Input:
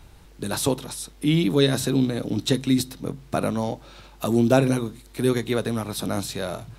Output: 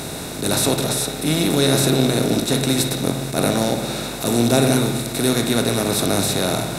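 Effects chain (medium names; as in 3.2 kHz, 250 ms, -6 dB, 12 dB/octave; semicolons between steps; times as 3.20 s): spectral levelling over time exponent 0.4; treble shelf 4.1 kHz +9 dB; band-stop 3.1 kHz, Q 6.8; spring tank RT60 1.4 s, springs 59 ms, chirp 20 ms, DRR 5 dB; attacks held to a fixed rise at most 150 dB/s; trim -3 dB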